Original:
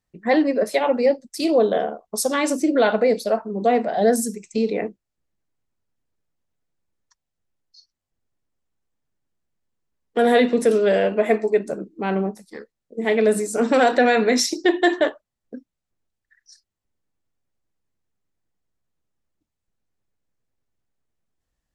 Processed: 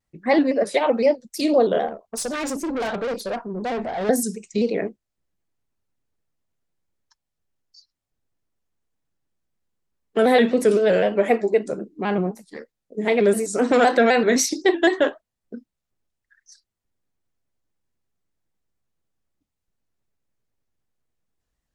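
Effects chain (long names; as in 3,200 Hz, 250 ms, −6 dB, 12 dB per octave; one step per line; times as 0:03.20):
0:01.88–0:04.09: tube saturation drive 23 dB, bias 0.25
pitch modulation by a square or saw wave square 3.9 Hz, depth 100 cents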